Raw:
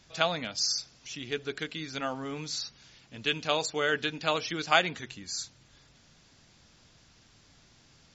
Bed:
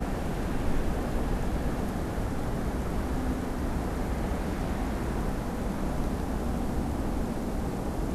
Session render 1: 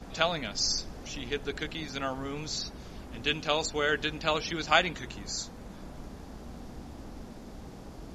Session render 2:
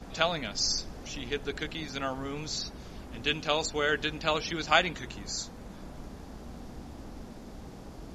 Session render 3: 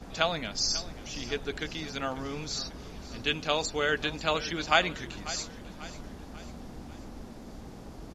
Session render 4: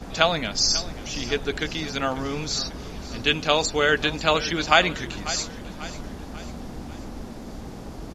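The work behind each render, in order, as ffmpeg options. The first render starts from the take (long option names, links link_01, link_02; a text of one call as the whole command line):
ffmpeg -i in.wav -i bed.wav -filter_complex "[1:a]volume=-14dB[link_01];[0:a][link_01]amix=inputs=2:normalize=0" out.wav
ffmpeg -i in.wav -af anull out.wav
ffmpeg -i in.wav -af "aecho=1:1:542|1084|1626|2168:0.15|0.0748|0.0374|0.0187" out.wav
ffmpeg -i in.wav -af "volume=7.5dB,alimiter=limit=-1dB:level=0:latency=1" out.wav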